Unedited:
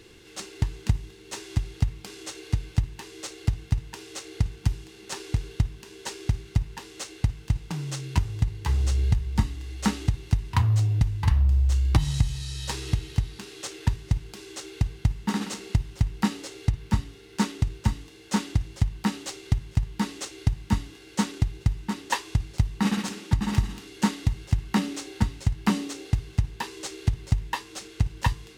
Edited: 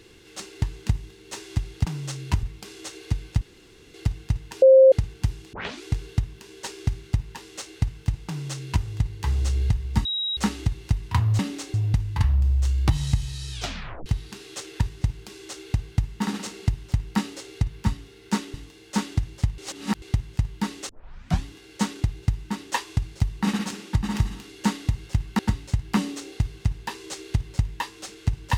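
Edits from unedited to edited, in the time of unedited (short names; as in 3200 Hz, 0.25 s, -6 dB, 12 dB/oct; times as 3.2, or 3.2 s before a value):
2.83–3.36 room tone
4.04–4.34 bleep 529 Hz -8.5 dBFS
4.95 tape start 0.30 s
7.69–8.27 copy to 1.85
9.47–9.79 bleep 3830 Hz -24 dBFS
12.59 tape stop 0.54 s
17.61–17.92 cut
18.96–19.4 reverse
20.27 tape start 0.55 s
24.77–25.12 move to 10.81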